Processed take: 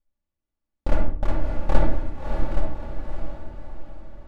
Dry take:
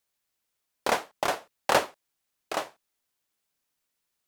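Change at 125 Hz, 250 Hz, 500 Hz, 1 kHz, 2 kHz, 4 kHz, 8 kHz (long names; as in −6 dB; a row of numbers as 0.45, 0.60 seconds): +21.0, +9.5, −1.0, −5.0, −7.5, −13.0, −18.5 decibels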